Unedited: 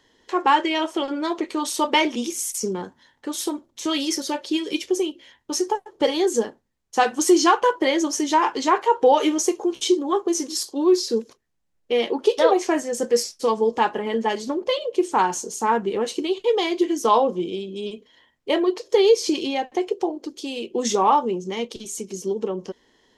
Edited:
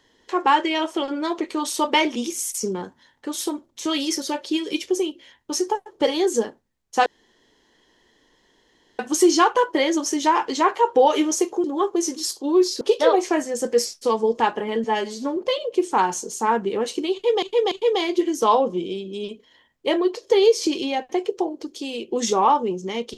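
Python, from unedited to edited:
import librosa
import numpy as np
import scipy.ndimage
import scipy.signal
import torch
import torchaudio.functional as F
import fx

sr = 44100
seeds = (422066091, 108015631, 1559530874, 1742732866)

y = fx.edit(x, sr, fx.insert_room_tone(at_s=7.06, length_s=1.93),
    fx.cut(start_s=9.71, length_s=0.25),
    fx.cut(start_s=11.13, length_s=1.06),
    fx.stretch_span(start_s=14.22, length_s=0.35, factor=1.5),
    fx.repeat(start_s=16.34, length_s=0.29, count=3), tone=tone)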